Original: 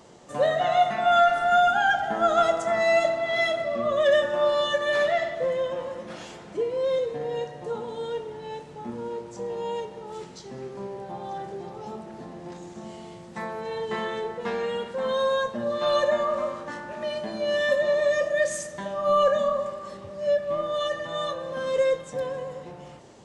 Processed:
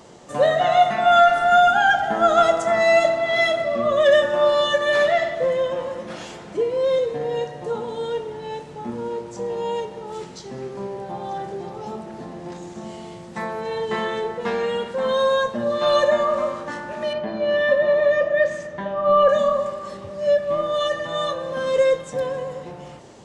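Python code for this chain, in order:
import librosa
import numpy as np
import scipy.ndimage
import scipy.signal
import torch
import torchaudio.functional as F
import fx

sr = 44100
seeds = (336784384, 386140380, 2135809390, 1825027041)

y = fx.lowpass(x, sr, hz=2600.0, slope=12, at=(17.13, 19.29))
y = y * 10.0 ** (5.0 / 20.0)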